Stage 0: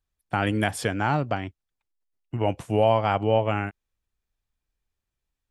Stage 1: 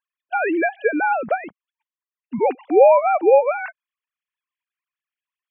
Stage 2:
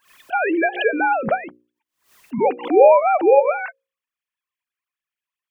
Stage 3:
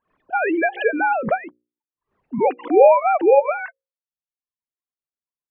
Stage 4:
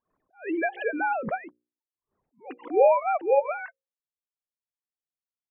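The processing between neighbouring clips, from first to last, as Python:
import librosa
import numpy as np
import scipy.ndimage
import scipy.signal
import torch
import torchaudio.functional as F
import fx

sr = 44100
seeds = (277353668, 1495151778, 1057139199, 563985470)

y1 = fx.sine_speech(x, sr)
y1 = y1 * librosa.db_to_amplitude(6.5)
y2 = fx.hum_notches(y1, sr, base_hz=60, count=9)
y2 = fx.pre_swell(y2, sr, db_per_s=140.0)
y2 = y2 * librosa.db_to_amplitude(1.0)
y3 = fx.dereverb_blind(y2, sr, rt60_s=0.8)
y3 = fx.env_lowpass(y3, sr, base_hz=590.0, full_db=-11.5)
y4 = fx.env_lowpass(y3, sr, base_hz=1200.0, full_db=-10.5)
y4 = fx.attack_slew(y4, sr, db_per_s=220.0)
y4 = y4 * librosa.db_to_amplitude(-7.0)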